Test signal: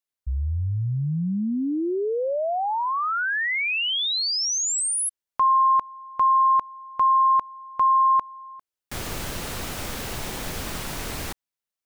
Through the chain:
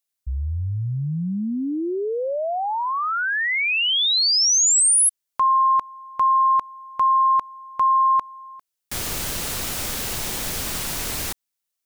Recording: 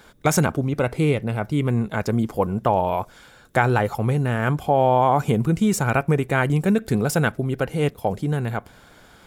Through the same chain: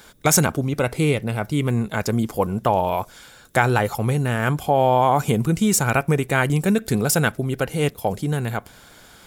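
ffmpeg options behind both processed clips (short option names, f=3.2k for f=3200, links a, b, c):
-af "highshelf=f=3.3k:g=9.5"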